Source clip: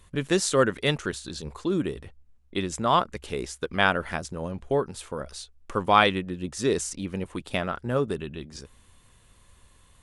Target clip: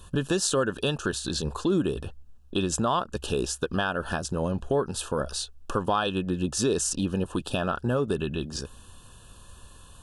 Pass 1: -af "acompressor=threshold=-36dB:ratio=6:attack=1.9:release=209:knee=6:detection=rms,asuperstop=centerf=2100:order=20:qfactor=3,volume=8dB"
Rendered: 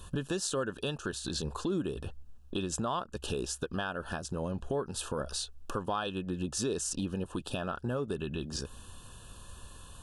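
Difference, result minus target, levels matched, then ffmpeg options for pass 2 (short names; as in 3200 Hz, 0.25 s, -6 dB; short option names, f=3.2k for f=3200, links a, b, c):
compressor: peak gain reduction +8 dB
-af "acompressor=threshold=-26.5dB:ratio=6:attack=1.9:release=209:knee=6:detection=rms,asuperstop=centerf=2100:order=20:qfactor=3,volume=8dB"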